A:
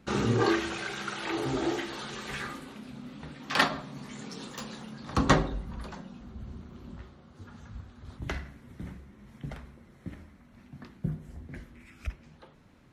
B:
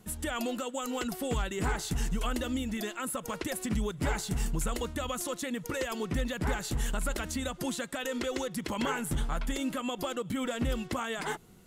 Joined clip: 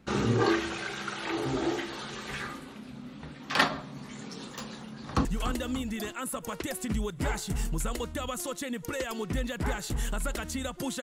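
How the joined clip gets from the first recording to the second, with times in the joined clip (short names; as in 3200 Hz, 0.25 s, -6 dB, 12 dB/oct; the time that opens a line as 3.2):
A
4.67–5.25 echo throw 0.29 s, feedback 55%, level -10 dB
5.25 switch to B from 2.06 s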